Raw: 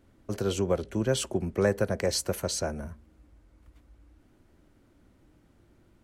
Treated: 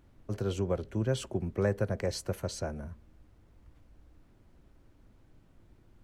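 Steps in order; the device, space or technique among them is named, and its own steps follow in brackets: car interior (peaking EQ 110 Hz +6.5 dB 0.85 oct; treble shelf 4.3 kHz -7.5 dB; brown noise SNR 24 dB); trim -5 dB

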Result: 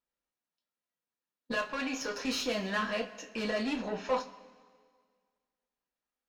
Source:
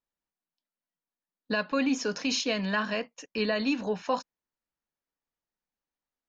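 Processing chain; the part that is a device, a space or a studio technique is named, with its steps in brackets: 1.52–2.25 s: high-pass 410 Hz 12 dB/octave; tube preamp driven hard (valve stage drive 29 dB, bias 0.35; bass shelf 130 Hz -7 dB; treble shelf 4.5 kHz -7 dB); two-slope reverb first 0.21 s, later 1.8 s, from -20 dB, DRR 0 dB

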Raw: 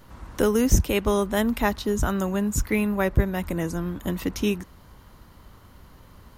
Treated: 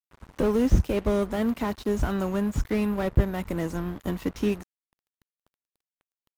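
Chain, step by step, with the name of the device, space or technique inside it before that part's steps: early transistor amplifier (crossover distortion -39 dBFS; slew-rate limiter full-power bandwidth 45 Hz); 1.36–1.76 s: high-pass 80 Hz

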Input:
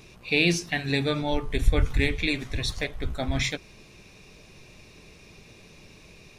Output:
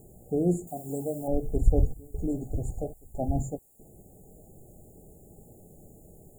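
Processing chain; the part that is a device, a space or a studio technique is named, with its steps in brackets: worn cassette (low-pass 6.6 kHz 12 dB/octave; wow and flutter; level dips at 1.94/2.94/3.59 s, 200 ms -23 dB; white noise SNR 32 dB); 0.67–1.28 s: tilt EQ +3.5 dB/octave; FFT band-reject 840–6700 Hz

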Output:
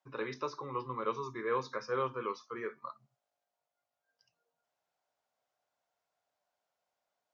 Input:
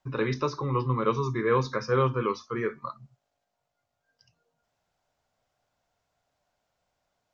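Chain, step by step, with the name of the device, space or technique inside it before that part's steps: filter by subtraction (in parallel: low-pass 660 Hz 12 dB/octave + polarity flip); on the sum: trim -9 dB

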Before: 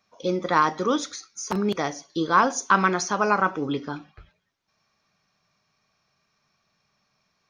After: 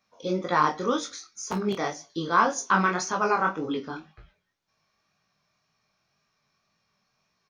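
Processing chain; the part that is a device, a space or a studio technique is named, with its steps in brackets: double-tracked vocal (doubling 26 ms -9 dB; chorus 1.9 Hz, delay 17 ms, depth 6.4 ms)

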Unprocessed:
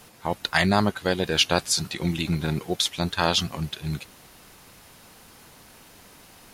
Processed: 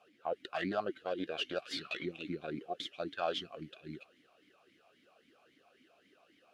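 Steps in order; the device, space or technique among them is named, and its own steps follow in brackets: 1.62–2.05 s: high-order bell 2.1 kHz +12 dB 2.4 oct; talk box (valve stage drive 15 dB, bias 0.65; talking filter a-i 3.7 Hz); trim +1 dB

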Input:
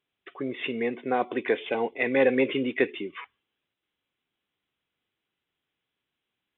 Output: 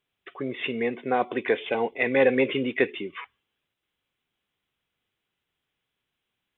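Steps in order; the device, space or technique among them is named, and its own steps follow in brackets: low shelf boost with a cut just above (bass shelf 79 Hz +6.5 dB; peaking EQ 300 Hz -3.5 dB 0.66 oct); trim +2 dB

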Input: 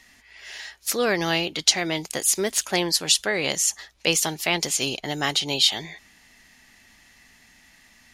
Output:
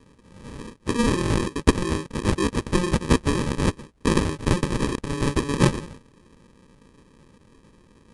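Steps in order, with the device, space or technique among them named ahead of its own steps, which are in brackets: crushed at another speed (playback speed 2×; sample-and-hold 31×; playback speed 0.5×); trim +1.5 dB

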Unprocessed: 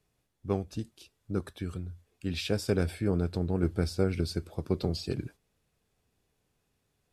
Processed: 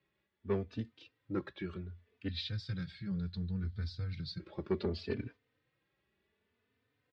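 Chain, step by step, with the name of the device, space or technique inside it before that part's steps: 2.28–4.40 s: FFT filter 190 Hz 0 dB, 280 Hz -23 dB, 550 Hz -24 dB, 1.6 kHz -10 dB, 2.7 kHz -13 dB, 4 kHz +6 dB, 5.7 kHz -1 dB; barber-pole flanger into a guitar amplifier (endless flanger 3.2 ms +0.67 Hz; saturation -24 dBFS, distortion -19 dB; cabinet simulation 110–3800 Hz, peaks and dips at 160 Hz -8 dB, 730 Hz -7 dB, 1.9 kHz +7 dB); trim +2 dB

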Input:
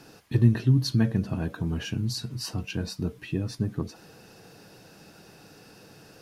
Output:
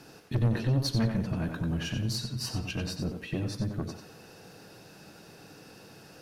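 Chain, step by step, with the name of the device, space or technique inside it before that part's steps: rockabilly slapback (valve stage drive 23 dB, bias 0.45; tape echo 91 ms, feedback 33%, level -5 dB, low-pass 5.7 kHz); trim +1 dB

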